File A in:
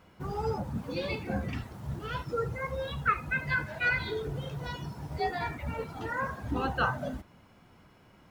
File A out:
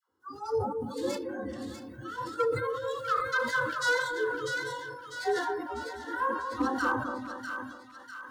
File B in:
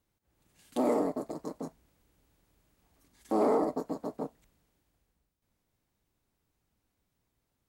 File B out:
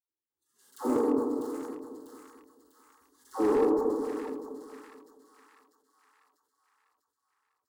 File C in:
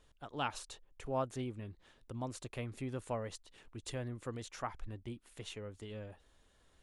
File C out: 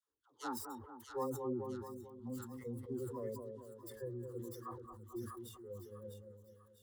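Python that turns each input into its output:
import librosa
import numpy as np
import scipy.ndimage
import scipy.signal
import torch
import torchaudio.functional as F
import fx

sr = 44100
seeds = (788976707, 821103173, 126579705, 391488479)

p1 = fx.tracing_dist(x, sr, depth_ms=0.16)
p2 = scipy.signal.sosfilt(scipy.signal.butter(2, 190.0, 'highpass', fs=sr, output='sos'), p1)
p3 = fx.noise_reduce_blind(p2, sr, reduce_db=19)
p4 = fx.low_shelf(p3, sr, hz=330.0, db=5.5)
p5 = fx.fixed_phaser(p4, sr, hz=650.0, stages=6)
p6 = fx.level_steps(p5, sr, step_db=17)
p7 = p5 + F.gain(torch.from_numpy(p6), 1.0).numpy()
p8 = fx.hpss(p7, sr, part='percussive', gain_db=-7)
p9 = fx.dispersion(p8, sr, late='lows', ms=97.0, hz=710.0)
p10 = np.clip(10.0 ** (20.0 / 20.0) * p9, -1.0, 1.0) / 10.0 ** (20.0 / 20.0)
p11 = fx.echo_split(p10, sr, split_hz=1300.0, low_ms=220, high_ms=647, feedback_pct=52, wet_db=-6)
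y = fx.sustainer(p11, sr, db_per_s=59.0)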